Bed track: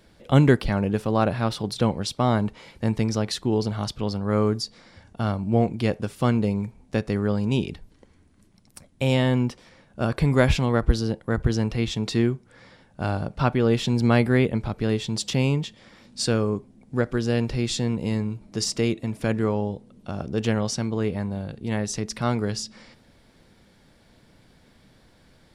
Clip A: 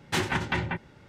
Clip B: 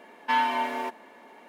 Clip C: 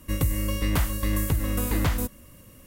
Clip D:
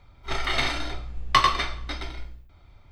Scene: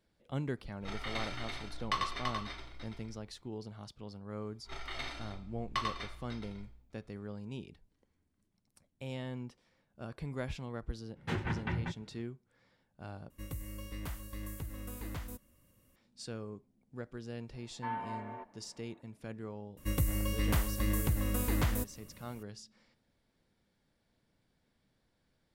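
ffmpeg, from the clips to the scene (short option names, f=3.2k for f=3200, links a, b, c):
-filter_complex "[4:a]asplit=2[a][b];[3:a]asplit=2[c][d];[0:a]volume=-20dB[e];[a]aecho=1:1:335:0.596[f];[1:a]bass=f=250:g=8,treble=f=4k:g=-12[g];[2:a]lowpass=1.5k[h];[e]asplit=2[i][j];[i]atrim=end=13.304[k];[c]atrim=end=2.66,asetpts=PTS-STARTPTS,volume=-17.5dB[l];[j]atrim=start=15.956[m];[f]atrim=end=2.91,asetpts=PTS-STARTPTS,volume=-14.5dB,afade=t=in:d=0.004:c=hsin,afade=t=out:st=2.906:d=0.004:c=hsin,adelay=570[n];[b]atrim=end=2.91,asetpts=PTS-STARTPTS,volume=-16dB,afade=t=in:d=0.004:c=hsin,afade=t=out:st=2.906:d=0.004:c=hsin,adelay=194481S[o];[g]atrim=end=1.08,asetpts=PTS-STARTPTS,volume=-11dB,afade=t=in:d=0.02,afade=t=out:st=1.06:d=0.02,adelay=11150[p];[h]atrim=end=1.48,asetpts=PTS-STARTPTS,volume=-13.5dB,afade=t=in:d=0.004:c=hsin,afade=t=out:st=1.476:d=0.004:c=hsin,adelay=17540[q];[d]atrim=end=2.66,asetpts=PTS-STARTPTS,volume=-6.5dB,afade=t=in:d=0.004:c=hsin,afade=t=out:st=2.656:d=0.004:c=hsin,adelay=19770[r];[k][l]acrossfade=d=0.004:c1=hsin:c2=hsin[s];[s][m]acrossfade=d=0.004:c1=hsin:c2=hsin[t];[t][n][o][p][q][r]amix=inputs=6:normalize=0"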